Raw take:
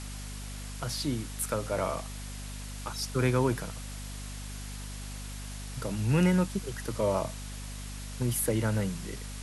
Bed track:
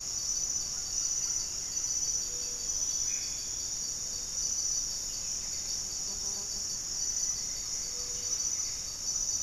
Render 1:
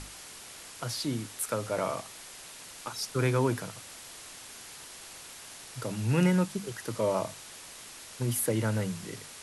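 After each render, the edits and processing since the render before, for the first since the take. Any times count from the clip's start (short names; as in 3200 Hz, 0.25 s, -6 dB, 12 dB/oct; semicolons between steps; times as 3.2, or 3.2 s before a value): notches 50/100/150/200/250 Hz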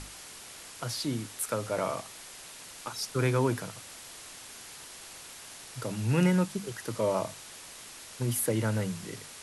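nothing audible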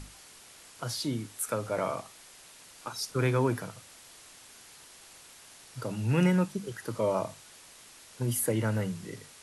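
noise print and reduce 6 dB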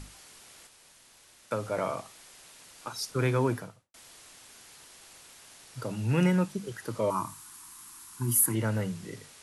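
0.67–1.51 room tone; 3.49–3.94 studio fade out; 7.1–8.55 EQ curve 350 Hz 0 dB, 530 Hz -28 dB, 1000 Hz +8 dB, 2000 Hz -4 dB, 3200 Hz -4 dB, 5700 Hz 0 dB, 12000 Hz +10 dB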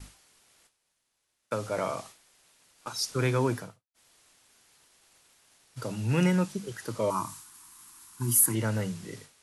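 expander -44 dBFS; dynamic EQ 5900 Hz, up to +5 dB, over -52 dBFS, Q 0.77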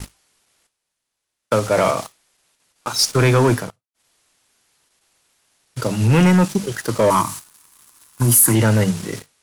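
in parallel at -1 dB: level quantiser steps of 16 dB; on the sum: sample leveller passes 3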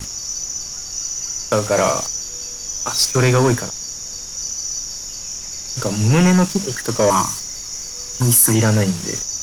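add bed track +6 dB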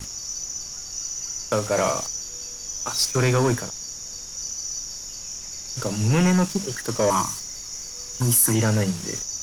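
gain -5.5 dB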